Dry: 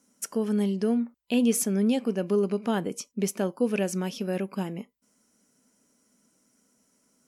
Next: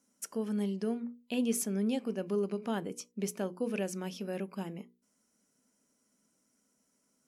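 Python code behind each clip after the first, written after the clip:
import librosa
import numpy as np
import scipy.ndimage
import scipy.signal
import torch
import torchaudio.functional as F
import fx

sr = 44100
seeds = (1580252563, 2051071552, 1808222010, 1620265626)

y = fx.hum_notches(x, sr, base_hz=60, count=8)
y = F.gain(torch.from_numpy(y), -7.0).numpy()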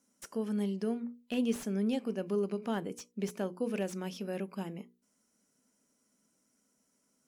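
y = fx.slew_limit(x, sr, full_power_hz=43.0)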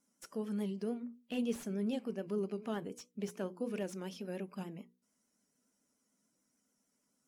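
y = fx.spec_quant(x, sr, step_db=15)
y = fx.vibrato(y, sr, rate_hz=6.9, depth_cents=53.0)
y = F.gain(torch.from_numpy(y), -4.0).numpy()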